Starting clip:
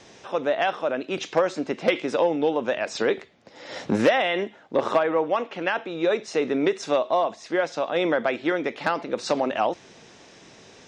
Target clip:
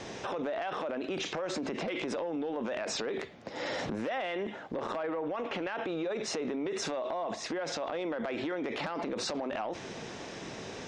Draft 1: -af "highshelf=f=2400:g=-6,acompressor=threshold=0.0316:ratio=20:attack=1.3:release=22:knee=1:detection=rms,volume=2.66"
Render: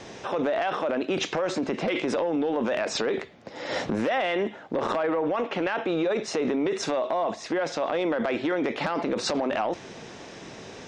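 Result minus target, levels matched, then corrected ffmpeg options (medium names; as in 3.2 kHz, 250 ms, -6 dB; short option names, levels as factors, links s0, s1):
compression: peak gain reduction -8.5 dB
-af "highshelf=f=2400:g=-6,acompressor=threshold=0.0112:ratio=20:attack=1.3:release=22:knee=1:detection=rms,volume=2.66"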